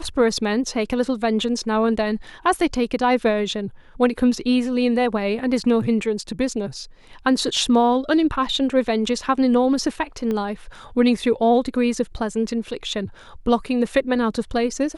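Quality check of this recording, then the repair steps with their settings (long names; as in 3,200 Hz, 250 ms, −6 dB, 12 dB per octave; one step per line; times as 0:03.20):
0:10.31: click −15 dBFS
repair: click removal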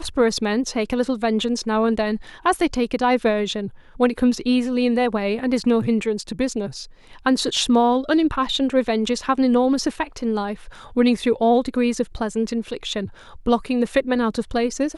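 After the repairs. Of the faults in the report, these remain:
0:10.31: click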